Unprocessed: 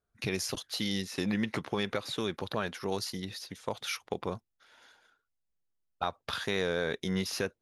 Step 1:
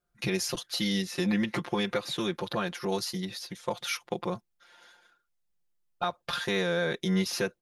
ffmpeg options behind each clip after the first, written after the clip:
-af "aecho=1:1:5.7:0.97"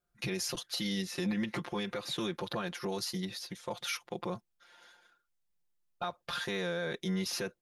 -af "alimiter=limit=-22.5dB:level=0:latency=1:release=35,volume=-2.5dB"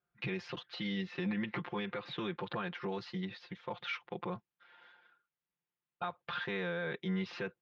-af "highpass=100,equalizer=f=240:t=q:w=4:g=-5,equalizer=f=340:t=q:w=4:g=-3,equalizer=f=610:t=q:w=4:g=-7,lowpass=f=3.1k:w=0.5412,lowpass=f=3.1k:w=1.3066"

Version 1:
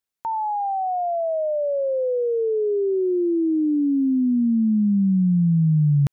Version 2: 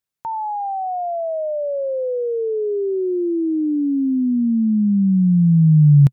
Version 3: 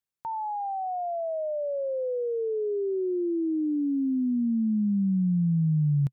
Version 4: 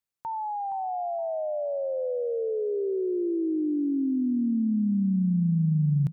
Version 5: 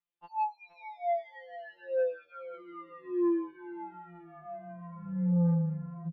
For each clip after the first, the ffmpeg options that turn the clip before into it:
-af "equalizer=f=130:w=1.8:g=9"
-af "acompressor=threshold=-15dB:ratio=6,volume=-7dB"
-af "aecho=1:1:468|936|1404:0.251|0.0728|0.0211"
-af "aresample=8000,aresample=44100,asoftclip=type=tanh:threshold=-30dB,afftfilt=real='re*2.83*eq(mod(b,8),0)':imag='im*2.83*eq(mod(b,8),0)':win_size=2048:overlap=0.75"

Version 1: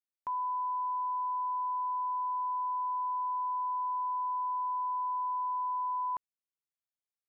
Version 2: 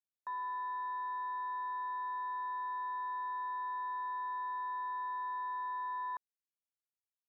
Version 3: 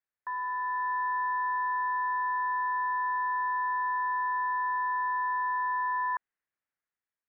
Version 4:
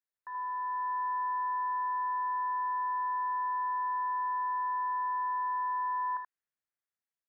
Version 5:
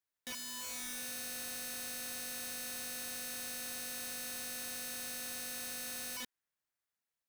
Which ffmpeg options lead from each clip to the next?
-af "aemphasis=mode=production:type=cd,afwtdn=0.0141,equalizer=f=740:t=o:w=2:g=-6.5"
-af "dynaudnorm=f=150:g=9:m=4dB,lowpass=f=1.8k:t=q:w=2.8,volume=1.5dB"
-af "aecho=1:1:35|56|79:0.15|0.158|0.596,volume=-7.5dB"
-af "aeval=exprs='(mod(100*val(0)+1,2)-1)/100':c=same,volume=2dB"

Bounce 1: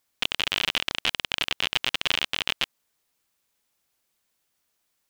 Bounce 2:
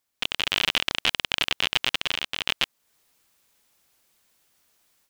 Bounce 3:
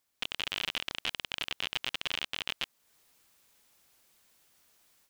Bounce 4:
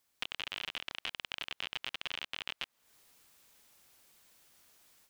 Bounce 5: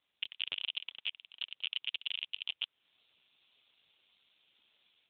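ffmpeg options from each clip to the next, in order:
-af "dynaudnorm=f=140:g=3:m=12.5dB,volume=-4dB"
-af "alimiter=limit=-16dB:level=0:latency=1:release=16"
-filter_complex "[0:a]acrossover=split=530|3800[a][b][c];[a]acompressor=threshold=-57dB:ratio=4[d];[b]acompressor=threshold=-38dB:ratio=4[e];[c]acompressor=threshold=-53dB:ratio=4[f];[d][e][f]amix=inputs=3:normalize=0,volume=2dB"
-af "aexciter=amount=5.4:drive=5.2:freq=2.5k,volume=-5.5dB" -ar 8000 -c:a libopencore_amrnb -b:a 7400

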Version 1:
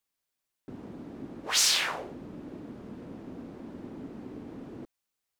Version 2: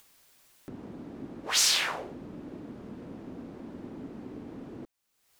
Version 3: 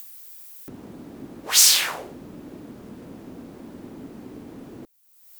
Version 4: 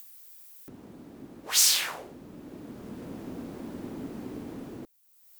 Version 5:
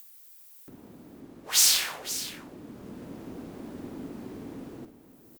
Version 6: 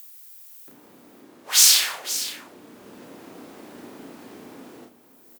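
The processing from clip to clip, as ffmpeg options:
-af "acompressor=mode=upward:threshold=-42dB:ratio=2.5"
-af "aemphasis=mode=production:type=50fm,volume=2.5dB"
-af "dynaudnorm=f=250:g=7:m=8.5dB,volume=-7dB"
-filter_complex "[0:a]asplit=2[a][b];[b]acrusher=bits=3:mix=0:aa=0.000001,volume=-9dB[c];[a][c]amix=inputs=2:normalize=0,aecho=1:1:53|143|519:0.282|0.106|0.224,volume=-2dB"
-filter_complex "[0:a]highpass=f=760:p=1,asplit=2[a][b];[b]adelay=33,volume=-3.5dB[c];[a][c]amix=inputs=2:normalize=0,volume=4.5dB"

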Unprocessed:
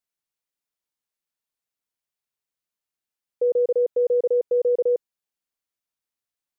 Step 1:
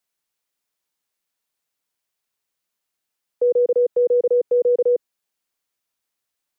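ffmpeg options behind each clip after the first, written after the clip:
-filter_complex "[0:a]lowshelf=f=190:g=-5,acrossover=split=340|370[a][b][c];[c]alimiter=level_in=5.5dB:limit=-24dB:level=0:latency=1:release=49,volume=-5.5dB[d];[a][b][d]amix=inputs=3:normalize=0,volume=8dB"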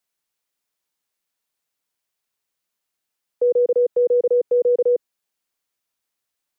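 -af anull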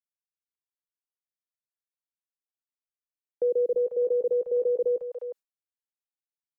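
-filter_complex "[0:a]acrossover=split=180|670[a][b][c];[a]adelay=50[d];[c]adelay=360[e];[d][b][e]amix=inputs=3:normalize=0,agate=range=-33dB:threshold=-37dB:ratio=3:detection=peak,volume=-4.5dB"

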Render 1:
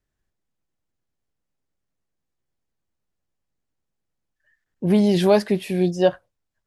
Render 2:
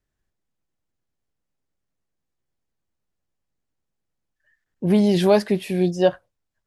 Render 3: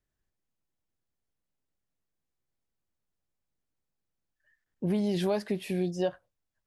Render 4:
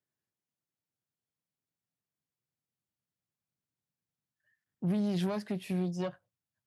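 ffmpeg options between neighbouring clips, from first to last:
-af anull
-af "acompressor=threshold=-22dB:ratio=3,volume=-5dB"
-af "aeval=exprs='(tanh(17.8*val(0)+0.65)-tanh(0.65))/17.8':c=same,asubboost=boost=3:cutoff=210,highpass=f=110:w=0.5412,highpass=f=110:w=1.3066,volume=-1.5dB"

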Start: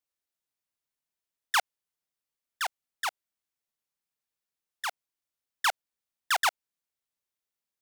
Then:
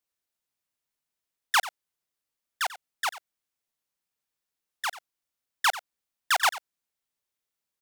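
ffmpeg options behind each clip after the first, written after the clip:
-af "aecho=1:1:91:0.168,volume=2.5dB"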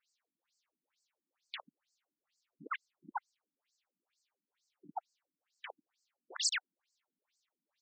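-af "acompressor=threshold=-29dB:ratio=1.5,aeval=exprs='(mod(42.2*val(0)+1,2)-1)/42.2':c=same,afftfilt=real='re*between(b*sr/1024,220*pow(6100/220,0.5+0.5*sin(2*PI*2.2*pts/sr))/1.41,220*pow(6100/220,0.5+0.5*sin(2*PI*2.2*pts/sr))*1.41)':imag='im*between(b*sr/1024,220*pow(6100/220,0.5+0.5*sin(2*PI*2.2*pts/sr))/1.41,220*pow(6100/220,0.5+0.5*sin(2*PI*2.2*pts/sr))*1.41)':win_size=1024:overlap=0.75,volume=12dB"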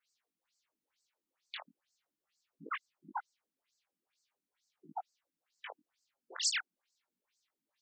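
-af "flanger=delay=18:depth=5.1:speed=0.38,volume=3.5dB"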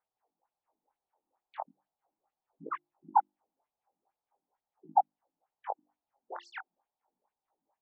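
-af "lowpass=f=820:t=q:w=4.9,equalizer=f=220:t=o:w=0.77:g=-2,bandreject=f=50:t=h:w=6,bandreject=f=100:t=h:w=6,bandreject=f=150:t=h:w=6,bandreject=f=200:t=h:w=6,bandreject=f=250:t=h:w=6,bandreject=f=300:t=h:w=6,bandreject=f=350:t=h:w=6,volume=4.5dB"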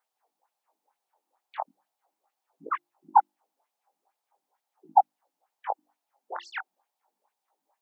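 -af "highpass=f=820:p=1,volume=9dB"

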